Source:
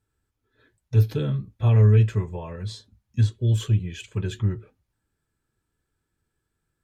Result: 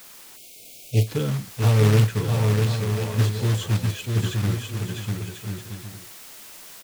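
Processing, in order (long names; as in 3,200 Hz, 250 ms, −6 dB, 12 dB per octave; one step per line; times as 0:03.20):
floating-point word with a short mantissa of 2 bits
notch filter 380 Hz, Q 12
in parallel at −9 dB: bit-depth reduction 6 bits, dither triangular
on the sum: parametric band 67 Hz −9.5 dB 1.3 octaves
on a send: bouncing-ball delay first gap 650 ms, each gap 0.6×, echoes 5
on the sum: time-frequency box erased 0:00.36–0:01.07, 760–2,100 Hz
highs frequency-modulated by the lows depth 0.23 ms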